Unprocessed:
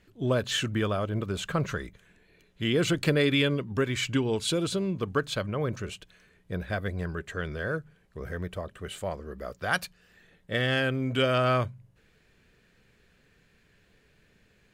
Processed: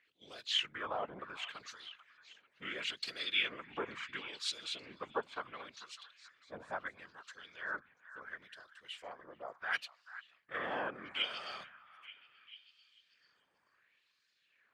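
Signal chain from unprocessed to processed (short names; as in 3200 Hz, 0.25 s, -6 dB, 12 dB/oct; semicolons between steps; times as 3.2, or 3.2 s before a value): harmoniser -7 st -10 dB; whisperiser; LFO band-pass sine 0.72 Hz 860–4800 Hz; on a send: delay with a stepping band-pass 0.44 s, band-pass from 1300 Hz, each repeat 0.7 oct, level -12 dB; on the sum: gain -2 dB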